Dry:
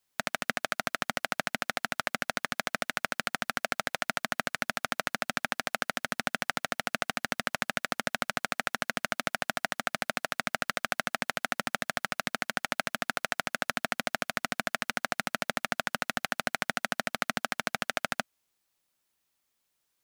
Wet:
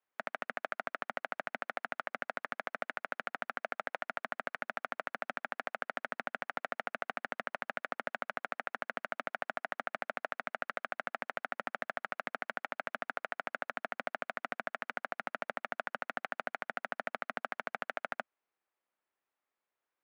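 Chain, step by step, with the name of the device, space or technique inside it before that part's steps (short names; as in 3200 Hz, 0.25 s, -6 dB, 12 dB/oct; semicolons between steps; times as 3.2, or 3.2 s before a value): DJ mixer with the lows and highs turned down (three-band isolator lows -17 dB, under 290 Hz, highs -23 dB, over 2300 Hz; limiter -15.5 dBFS, peak gain reduction 5 dB); gain -2.5 dB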